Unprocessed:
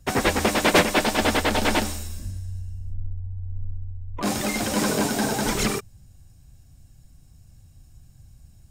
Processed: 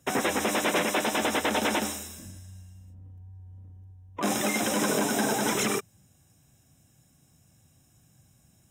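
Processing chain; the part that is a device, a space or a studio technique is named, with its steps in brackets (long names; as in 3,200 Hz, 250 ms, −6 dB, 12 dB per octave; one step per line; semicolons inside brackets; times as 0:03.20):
PA system with an anti-feedback notch (high-pass filter 190 Hz 12 dB per octave; Butterworth band-reject 4,500 Hz, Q 4.1; brickwall limiter −16 dBFS, peak gain reduction 10.5 dB)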